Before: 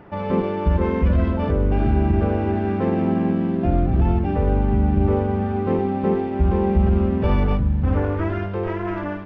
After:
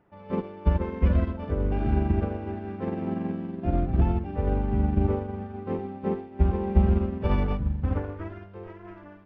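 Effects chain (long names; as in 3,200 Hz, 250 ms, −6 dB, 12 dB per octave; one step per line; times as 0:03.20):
expander for the loud parts 2.5 to 1, over −26 dBFS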